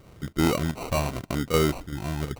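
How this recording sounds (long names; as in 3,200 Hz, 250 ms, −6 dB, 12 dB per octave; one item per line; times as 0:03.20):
chopped level 2.6 Hz, depth 60%, duty 85%
phaser sweep stages 12, 0.84 Hz, lowest notch 400–2,000 Hz
aliases and images of a low sample rate 1,700 Hz, jitter 0%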